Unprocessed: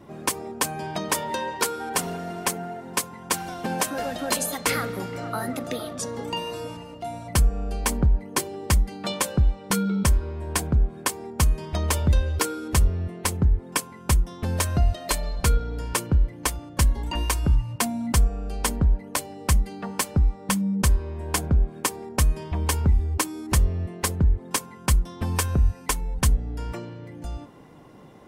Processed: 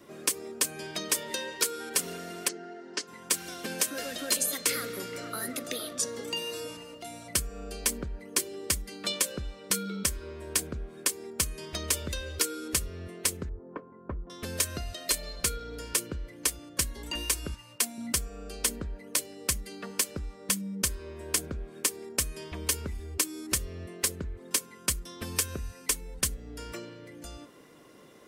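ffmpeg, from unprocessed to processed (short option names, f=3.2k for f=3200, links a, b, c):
-filter_complex "[0:a]asplit=3[a][b][c];[a]afade=t=out:st=2.47:d=0.02[d];[b]highpass=270,equalizer=f=360:t=q:w=4:g=6,equalizer=f=510:t=q:w=4:g=-9,equalizer=f=1.1k:t=q:w=4:g=-9,equalizer=f=2.4k:t=q:w=4:g=-9,equalizer=f=3.6k:t=q:w=4:g=-9,lowpass=f=5.1k:w=0.5412,lowpass=f=5.1k:w=1.3066,afade=t=in:st=2.47:d=0.02,afade=t=out:st=3.07:d=0.02[e];[c]afade=t=in:st=3.07:d=0.02[f];[d][e][f]amix=inputs=3:normalize=0,asettb=1/sr,asplit=3[g][h][i];[g]atrim=end=13.494[j];[h]atrim=start=13.49:end=14.3,asetpts=PTS-STARTPTS,afade=t=in:d=0.004:c=qsin,afade=t=out:st=0.806:d=0.004:c=qsin,lowpass=f=1.1k:w=0.5412,lowpass=f=1.1k:w=1.3066[k];[i]atrim=start=14.296[l];[j][k]acrossfade=d=0.004:c1=hsin:c2=qsin[m];[m][l]acrossfade=d=0.004:c1=qsin:c2=hsin,asettb=1/sr,asplit=3[n][o][p];[n]atrim=end=17.544[q];[o]atrim=start=17.54:end=17.98,asetpts=PTS-STARTPTS,afade=t=in:d=0.004:c=qsin,afade=t=out:st=0.436:d=0.004:c=qsin,highpass=f=480:p=1[r];[p]atrim=start=17.976[s];[q][r]acrossfade=d=0.004:c1=hsin:c2=qsin[t];[t][s]acrossfade=d=0.004:c1=qsin:c2=hsin,bass=f=250:g=-14,treble=f=4k:g=5,acrossover=split=590|1400|3200[u][v][w][x];[u]acompressor=threshold=-33dB:ratio=4[y];[v]acompressor=threshold=-44dB:ratio=4[z];[w]acompressor=threshold=-35dB:ratio=4[aa];[x]acompressor=threshold=-25dB:ratio=4[ab];[y][z][aa][ab]amix=inputs=4:normalize=0,equalizer=f=820:t=o:w=0.59:g=-12"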